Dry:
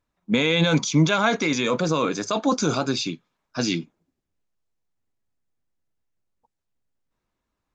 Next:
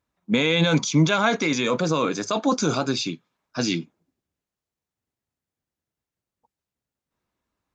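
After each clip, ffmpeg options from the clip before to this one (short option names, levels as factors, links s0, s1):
-af "highpass=54"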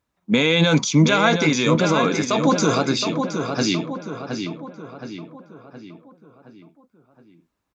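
-filter_complex "[0:a]asplit=2[s0][s1];[s1]adelay=719,lowpass=f=3300:p=1,volume=0.501,asplit=2[s2][s3];[s3]adelay=719,lowpass=f=3300:p=1,volume=0.5,asplit=2[s4][s5];[s5]adelay=719,lowpass=f=3300:p=1,volume=0.5,asplit=2[s6][s7];[s7]adelay=719,lowpass=f=3300:p=1,volume=0.5,asplit=2[s8][s9];[s9]adelay=719,lowpass=f=3300:p=1,volume=0.5,asplit=2[s10][s11];[s11]adelay=719,lowpass=f=3300:p=1,volume=0.5[s12];[s0][s2][s4][s6][s8][s10][s12]amix=inputs=7:normalize=0,volume=1.41"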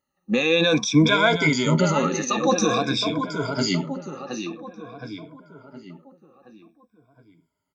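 -af "afftfilt=real='re*pow(10,20/40*sin(2*PI*(1.7*log(max(b,1)*sr/1024/100)/log(2)-(-0.5)*(pts-256)/sr)))':imag='im*pow(10,20/40*sin(2*PI*(1.7*log(max(b,1)*sr/1024/100)/log(2)-(-0.5)*(pts-256)/sr)))':win_size=1024:overlap=0.75,volume=0.501"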